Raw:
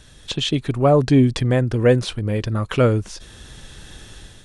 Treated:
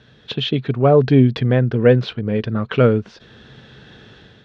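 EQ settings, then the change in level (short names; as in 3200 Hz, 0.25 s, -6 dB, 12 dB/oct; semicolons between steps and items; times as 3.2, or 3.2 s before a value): dynamic EQ 3000 Hz, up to +3 dB, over -36 dBFS, Q 0.9; speaker cabinet 100–4200 Hz, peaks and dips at 130 Hz +7 dB, 220 Hz +8 dB, 440 Hz +8 dB, 690 Hz +3 dB, 1500 Hz +5 dB; -2.5 dB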